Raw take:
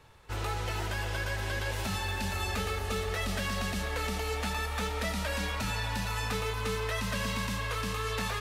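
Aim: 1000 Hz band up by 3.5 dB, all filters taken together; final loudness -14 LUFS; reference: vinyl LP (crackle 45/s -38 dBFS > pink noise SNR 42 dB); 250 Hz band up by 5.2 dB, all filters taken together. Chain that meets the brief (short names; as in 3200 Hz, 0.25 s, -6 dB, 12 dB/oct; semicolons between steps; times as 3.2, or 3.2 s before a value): bell 250 Hz +7 dB; bell 1000 Hz +4 dB; crackle 45/s -38 dBFS; pink noise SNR 42 dB; gain +17 dB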